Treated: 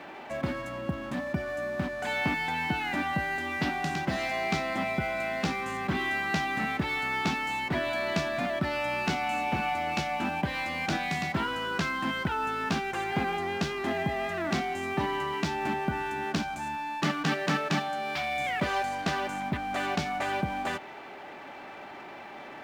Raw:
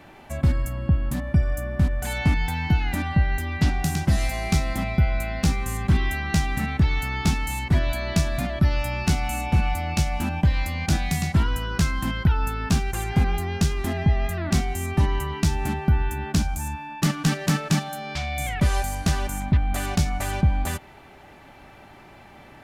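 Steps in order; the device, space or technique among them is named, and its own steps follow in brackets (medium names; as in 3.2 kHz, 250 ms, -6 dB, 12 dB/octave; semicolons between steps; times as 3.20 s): phone line with mismatched companding (band-pass 300–3400 Hz; companding laws mixed up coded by mu)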